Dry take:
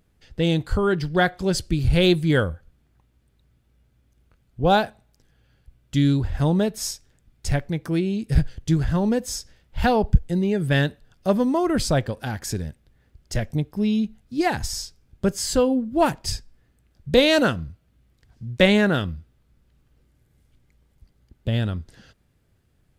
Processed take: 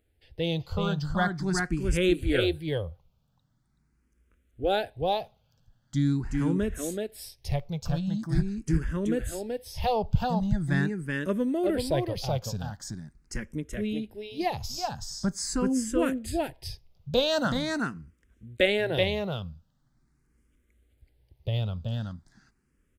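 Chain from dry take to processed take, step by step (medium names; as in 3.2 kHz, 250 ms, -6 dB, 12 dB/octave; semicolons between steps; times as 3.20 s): delay 378 ms -3 dB; barber-pole phaser +0.43 Hz; trim -4.5 dB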